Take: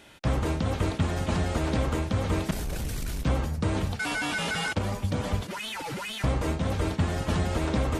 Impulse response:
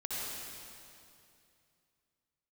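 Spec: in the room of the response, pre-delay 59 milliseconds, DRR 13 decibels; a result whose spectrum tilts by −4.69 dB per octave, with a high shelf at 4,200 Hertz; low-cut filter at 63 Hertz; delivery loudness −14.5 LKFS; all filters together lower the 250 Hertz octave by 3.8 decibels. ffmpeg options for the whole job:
-filter_complex "[0:a]highpass=63,equalizer=frequency=250:width_type=o:gain=-5.5,highshelf=frequency=4200:gain=8,asplit=2[link_01][link_02];[1:a]atrim=start_sample=2205,adelay=59[link_03];[link_02][link_03]afir=irnorm=-1:irlink=0,volume=-16.5dB[link_04];[link_01][link_04]amix=inputs=2:normalize=0,volume=14.5dB"

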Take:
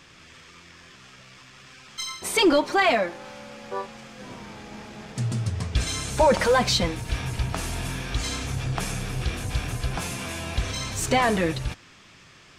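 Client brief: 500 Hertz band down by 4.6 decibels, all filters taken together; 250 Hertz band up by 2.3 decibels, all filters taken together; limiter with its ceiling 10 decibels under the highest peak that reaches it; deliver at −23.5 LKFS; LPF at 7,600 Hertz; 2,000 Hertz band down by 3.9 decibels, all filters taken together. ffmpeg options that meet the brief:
ffmpeg -i in.wav -af "lowpass=7600,equalizer=frequency=250:width_type=o:gain=5.5,equalizer=frequency=500:width_type=o:gain=-7,equalizer=frequency=2000:width_type=o:gain=-4.5,volume=7dB,alimiter=limit=-13dB:level=0:latency=1" out.wav

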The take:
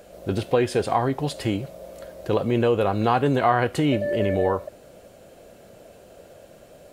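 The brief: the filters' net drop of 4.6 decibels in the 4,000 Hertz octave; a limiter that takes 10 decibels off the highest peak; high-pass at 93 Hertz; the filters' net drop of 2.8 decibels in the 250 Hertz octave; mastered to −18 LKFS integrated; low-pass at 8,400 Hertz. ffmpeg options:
ffmpeg -i in.wav -af "highpass=93,lowpass=8400,equalizer=frequency=250:width_type=o:gain=-3.5,equalizer=frequency=4000:width_type=o:gain=-6.5,volume=10.5dB,alimiter=limit=-6.5dB:level=0:latency=1" out.wav

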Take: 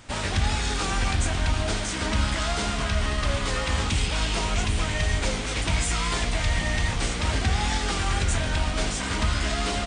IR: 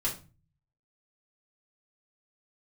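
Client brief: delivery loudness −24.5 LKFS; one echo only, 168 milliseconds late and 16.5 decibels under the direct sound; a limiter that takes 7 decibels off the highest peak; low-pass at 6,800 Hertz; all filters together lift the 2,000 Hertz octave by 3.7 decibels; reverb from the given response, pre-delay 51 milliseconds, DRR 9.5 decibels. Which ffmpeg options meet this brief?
-filter_complex "[0:a]lowpass=6800,equalizer=frequency=2000:width_type=o:gain=4.5,alimiter=limit=-20dB:level=0:latency=1,aecho=1:1:168:0.15,asplit=2[link_01][link_02];[1:a]atrim=start_sample=2205,adelay=51[link_03];[link_02][link_03]afir=irnorm=-1:irlink=0,volume=-15dB[link_04];[link_01][link_04]amix=inputs=2:normalize=0,volume=3.5dB"

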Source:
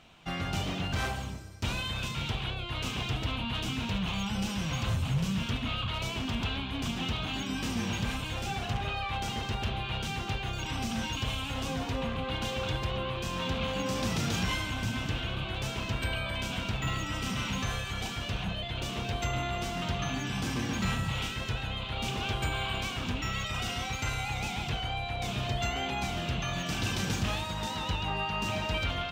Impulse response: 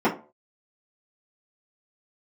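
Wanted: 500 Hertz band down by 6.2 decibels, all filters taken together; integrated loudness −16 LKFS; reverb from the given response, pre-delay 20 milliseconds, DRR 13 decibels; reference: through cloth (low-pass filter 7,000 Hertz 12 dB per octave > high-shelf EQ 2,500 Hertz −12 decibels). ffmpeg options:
-filter_complex "[0:a]equalizer=frequency=500:width_type=o:gain=-7.5,asplit=2[link_01][link_02];[1:a]atrim=start_sample=2205,adelay=20[link_03];[link_02][link_03]afir=irnorm=-1:irlink=0,volume=-30dB[link_04];[link_01][link_04]amix=inputs=2:normalize=0,lowpass=7000,highshelf=frequency=2500:gain=-12,volume=19.5dB"

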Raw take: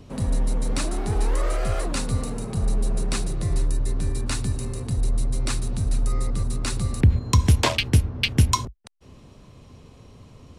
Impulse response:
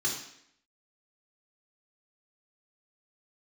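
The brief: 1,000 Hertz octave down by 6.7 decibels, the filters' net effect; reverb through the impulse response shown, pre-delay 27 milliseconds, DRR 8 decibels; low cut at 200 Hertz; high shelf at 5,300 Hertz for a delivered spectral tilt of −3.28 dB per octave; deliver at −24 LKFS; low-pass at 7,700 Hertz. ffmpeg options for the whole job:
-filter_complex "[0:a]highpass=200,lowpass=7700,equalizer=frequency=1000:width_type=o:gain=-8,highshelf=frequency=5300:gain=6,asplit=2[link_01][link_02];[1:a]atrim=start_sample=2205,adelay=27[link_03];[link_02][link_03]afir=irnorm=-1:irlink=0,volume=-14dB[link_04];[link_01][link_04]amix=inputs=2:normalize=0,volume=5dB"

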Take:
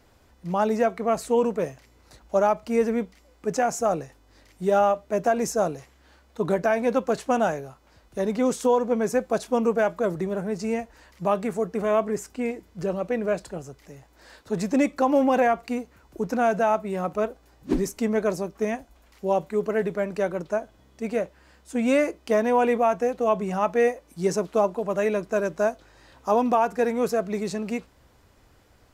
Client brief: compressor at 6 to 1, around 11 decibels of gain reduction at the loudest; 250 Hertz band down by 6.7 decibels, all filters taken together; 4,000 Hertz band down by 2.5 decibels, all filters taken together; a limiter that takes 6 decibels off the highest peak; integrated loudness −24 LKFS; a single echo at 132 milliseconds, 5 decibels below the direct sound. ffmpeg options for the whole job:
ffmpeg -i in.wav -af "equalizer=frequency=250:width_type=o:gain=-8,equalizer=frequency=4000:width_type=o:gain=-3.5,acompressor=threshold=-30dB:ratio=6,alimiter=level_in=1.5dB:limit=-24dB:level=0:latency=1,volume=-1.5dB,aecho=1:1:132:0.562,volume=12dB" out.wav

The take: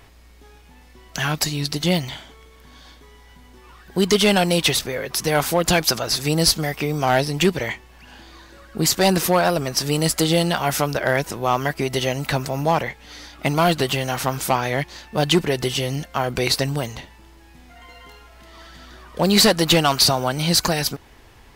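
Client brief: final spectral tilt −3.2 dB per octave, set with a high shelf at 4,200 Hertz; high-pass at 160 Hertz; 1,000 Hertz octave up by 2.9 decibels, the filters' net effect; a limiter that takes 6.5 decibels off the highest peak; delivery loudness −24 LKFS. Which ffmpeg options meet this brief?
ffmpeg -i in.wav -af "highpass=160,equalizer=frequency=1000:width_type=o:gain=3.5,highshelf=frequency=4200:gain=7.5,volume=-4dB,alimiter=limit=-11dB:level=0:latency=1" out.wav

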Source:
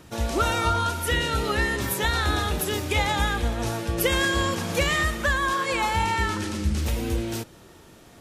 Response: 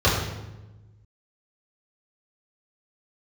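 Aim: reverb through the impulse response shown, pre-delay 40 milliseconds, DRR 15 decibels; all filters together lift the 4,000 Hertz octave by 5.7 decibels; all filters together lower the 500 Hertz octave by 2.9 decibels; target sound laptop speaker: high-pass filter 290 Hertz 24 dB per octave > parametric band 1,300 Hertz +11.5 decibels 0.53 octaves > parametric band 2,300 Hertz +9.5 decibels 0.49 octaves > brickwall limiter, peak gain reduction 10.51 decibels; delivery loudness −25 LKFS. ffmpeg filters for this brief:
-filter_complex "[0:a]equalizer=frequency=500:width_type=o:gain=-4,equalizer=frequency=4000:width_type=o:gain=4.5,asplit=2[link_01][link_02];[1:a]atrim=start_sample=2205,adelay=40[link_03];[link_02][link_03]afir=irnorm=-1:irlink=0,volume=-34.5dB[link_04];[link_01][link_04]amix=inputs=2:normalize=0,highpass=frequency=290:width=0.5412,highpass=frequency=290:width=1.3066,equalizer=frequency=1300:width_type=o:width=0.53:gain=11.5,equalizer=frequency=2300:width_type=o:width=0.49:gain=9.5,volume=-2dB,alimiter=limit=-16.5dB:level=0:latency=1"

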